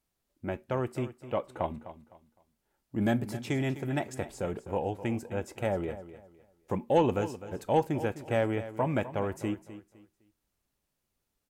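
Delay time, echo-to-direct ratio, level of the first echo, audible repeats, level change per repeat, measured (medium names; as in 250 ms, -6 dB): 255 ms, -13.5 dB, -14.0 dB, 2, -11.0 dB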